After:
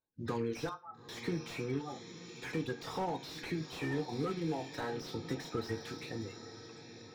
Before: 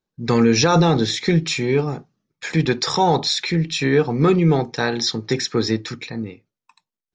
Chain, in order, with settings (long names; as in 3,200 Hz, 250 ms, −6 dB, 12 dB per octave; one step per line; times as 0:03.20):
spectral magnitudes quantised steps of 30 dB
reverb reduction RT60 0.61 s
downward compressor 4 to 1, threshold −23 dBFS, peak gain reduction 10 dB
flanger 0.46 Hz, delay 9.4 ms, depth 2.3 ms, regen +84%
0:00.69–0:01.09: flat-topped band-pass 1,100 Hz, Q 3.6
feedback delay with all-pass diffusion 900 ms, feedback 51%, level −13 dB
convolution reverb, pre-delay 5 ms, DRR 7.5 dB
slew-rate limiting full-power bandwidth 38 Hz
level −6 dB